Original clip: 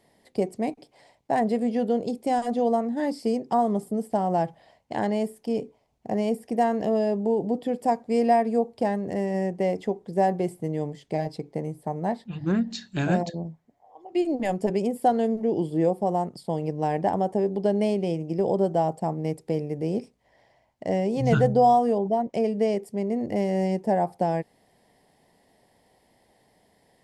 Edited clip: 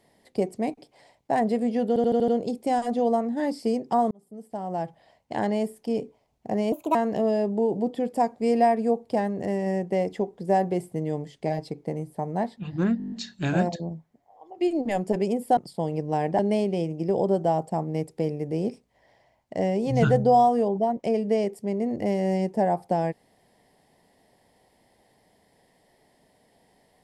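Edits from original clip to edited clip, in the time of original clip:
0:01.88: stutter 0.08 s, 6 plays
0:03.71–0:04.98: fade in
0:06.32–0:06.63: play speed 135%
0:12.66: stutter 0.02 s, 8 plays
0:15.11–0:16.27: remove
0:17.09–0:17.69: remove

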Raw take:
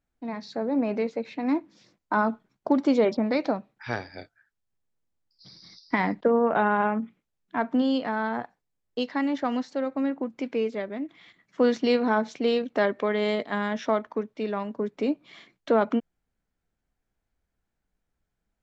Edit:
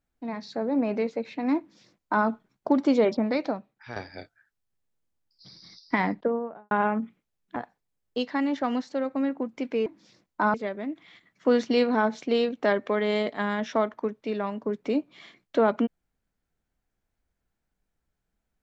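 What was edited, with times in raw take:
0:01.58–0:02.26: duplicate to 0:10.67
0:03.19–0:03.96: fade out, to −10 dB
0:05.98–0:06.71: fade out and dull
0:07.56–0:08.37: remove

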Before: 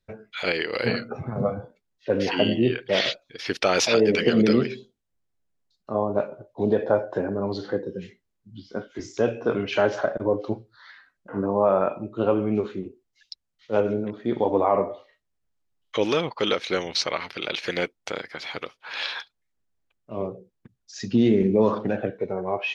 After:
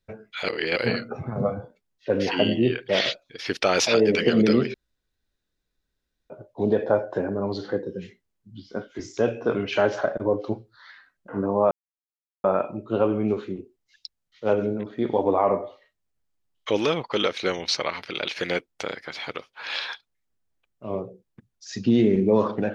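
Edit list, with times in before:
0:00.48–0:00.76: reverse
0:04.74–0:06.30: fill with room tone
0:11.71: splice in silence 0.73 s

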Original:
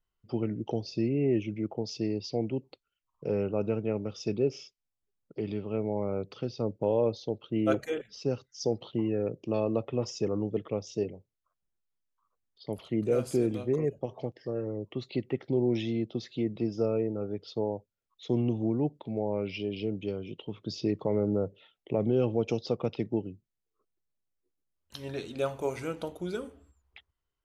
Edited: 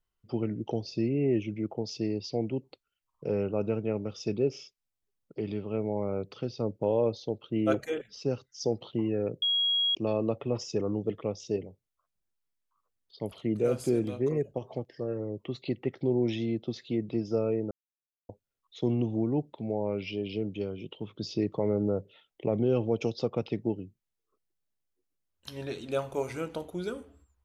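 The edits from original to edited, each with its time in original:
0:09.42: insert tone 3,300 Hz −23.5 dBFS 0.53 s
0:17.18–0:17.76: silence

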